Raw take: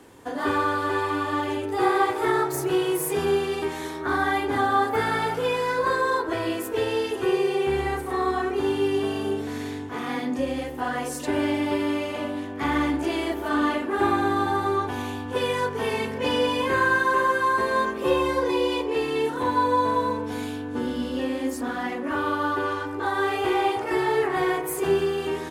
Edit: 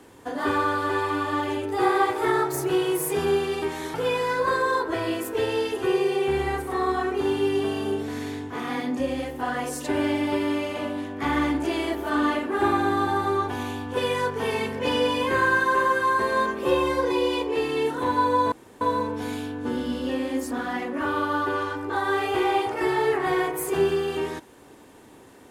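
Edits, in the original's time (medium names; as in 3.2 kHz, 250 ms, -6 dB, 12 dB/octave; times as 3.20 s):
3.94–5.33 s: delete
19.91 s: insert room tone 0.29 s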